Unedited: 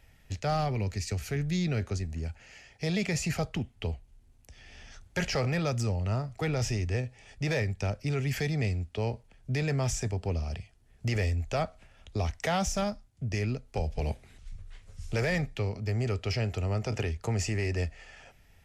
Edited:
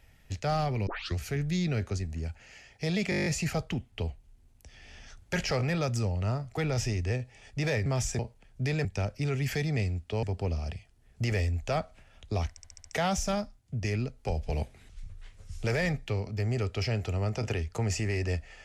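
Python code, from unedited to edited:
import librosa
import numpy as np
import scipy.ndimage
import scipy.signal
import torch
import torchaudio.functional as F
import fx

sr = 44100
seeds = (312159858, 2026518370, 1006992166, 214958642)

y = fx.edit(x, sr, fx.tape_start(start_s=0.87, length_s=0.3),
    fx.stutter(start_s=3.1, slice_s=0.02, count=9),
    fx.swap(start_s=7.7, length_s=1.38, other_s=9.74, other_length_s=0.33),
    fx.stutter(start_s=12.34, slice_s=0.07, count=6), tone=tone)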